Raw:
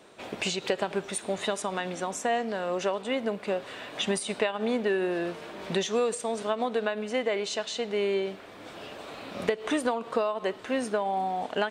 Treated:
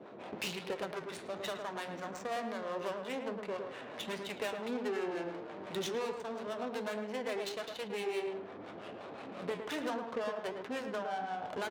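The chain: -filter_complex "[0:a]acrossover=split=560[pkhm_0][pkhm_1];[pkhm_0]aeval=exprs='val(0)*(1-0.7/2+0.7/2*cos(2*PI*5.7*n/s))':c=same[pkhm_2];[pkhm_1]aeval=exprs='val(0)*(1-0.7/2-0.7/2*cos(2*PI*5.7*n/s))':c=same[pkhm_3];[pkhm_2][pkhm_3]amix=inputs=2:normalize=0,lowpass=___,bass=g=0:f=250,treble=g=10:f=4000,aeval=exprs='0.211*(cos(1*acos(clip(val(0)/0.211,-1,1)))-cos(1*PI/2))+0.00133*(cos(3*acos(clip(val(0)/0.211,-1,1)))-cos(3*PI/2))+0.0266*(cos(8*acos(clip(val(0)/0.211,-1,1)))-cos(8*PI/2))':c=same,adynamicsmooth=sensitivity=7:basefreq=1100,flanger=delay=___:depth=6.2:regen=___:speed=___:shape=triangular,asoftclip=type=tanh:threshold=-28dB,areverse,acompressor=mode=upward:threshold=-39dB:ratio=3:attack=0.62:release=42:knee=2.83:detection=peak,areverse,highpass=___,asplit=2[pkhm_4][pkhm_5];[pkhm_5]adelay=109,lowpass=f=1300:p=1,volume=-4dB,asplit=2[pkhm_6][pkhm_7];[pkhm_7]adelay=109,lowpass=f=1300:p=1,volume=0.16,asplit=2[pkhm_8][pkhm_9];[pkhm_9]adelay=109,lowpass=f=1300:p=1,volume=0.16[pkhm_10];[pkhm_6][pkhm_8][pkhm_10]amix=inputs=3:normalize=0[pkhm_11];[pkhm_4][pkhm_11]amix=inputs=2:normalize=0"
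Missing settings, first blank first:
5500, 8.1, -74, 1.4, 130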